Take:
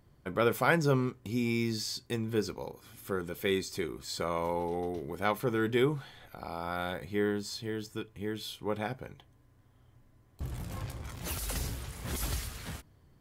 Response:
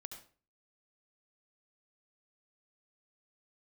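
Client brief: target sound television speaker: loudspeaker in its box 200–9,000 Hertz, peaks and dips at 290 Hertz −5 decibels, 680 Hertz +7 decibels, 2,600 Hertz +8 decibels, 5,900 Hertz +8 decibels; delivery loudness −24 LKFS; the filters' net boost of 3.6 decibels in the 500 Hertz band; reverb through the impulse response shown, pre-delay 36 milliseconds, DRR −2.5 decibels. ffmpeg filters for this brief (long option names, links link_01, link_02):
-filter_complex "[0:a]equalizer=frequency=500:width_type=o:gain=3.5,asplit=2[link_01][link_02];[1:a]atrim=start_sample=2205,adelay=36[link_03];[link_02][link_03]afir=irnorm=-1:irlink=0,volume=7dB[link_04];[link_01][link_04]amix=inputs=2:normalize=0,highpass=frequency=200:width=0.5412,highpass=frequency=200:width=1.3066,equalizer=frequency=290:width_type=q:width=4:gain=-5,equalizer=frequency=680:width_type=q:width=4:gain=7,equalizer=frequency=2600:width_type=q:width=4:gain=8,equalizer=frequency=5900:width_type=q:width=4:gain=8,lowpass=frequency=9000:width=0.5412,lowpass=frequency=9000:width=1.3066,volume=3dB"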